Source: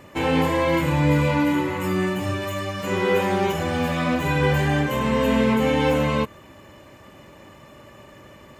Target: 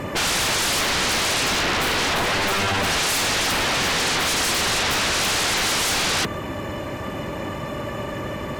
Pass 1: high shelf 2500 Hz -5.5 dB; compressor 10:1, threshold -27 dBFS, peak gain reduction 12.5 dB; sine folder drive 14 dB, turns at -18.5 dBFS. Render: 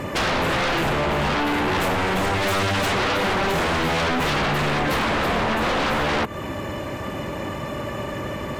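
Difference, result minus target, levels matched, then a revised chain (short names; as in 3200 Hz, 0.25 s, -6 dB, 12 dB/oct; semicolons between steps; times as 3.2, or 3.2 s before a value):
compressor: peak gain reduction +12.5 dB
high shelf 2500 Hz -5.5 dB; sine folder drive 14 dB, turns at -18.5 dBFS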